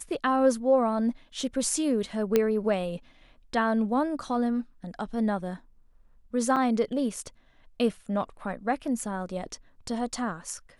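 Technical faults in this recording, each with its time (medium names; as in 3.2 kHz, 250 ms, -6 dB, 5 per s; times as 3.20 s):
2.36 s: pop -9 dBFS
6.56–6.57 s: dropout 5.5 ms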